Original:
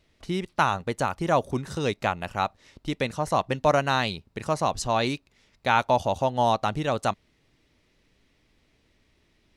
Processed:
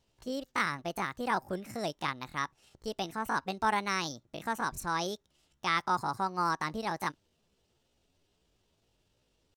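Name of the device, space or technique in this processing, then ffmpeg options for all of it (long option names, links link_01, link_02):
chipmunk voice: -af "asetrate=64194,aresample=44100,atempo=0.686977,volume=-8dB"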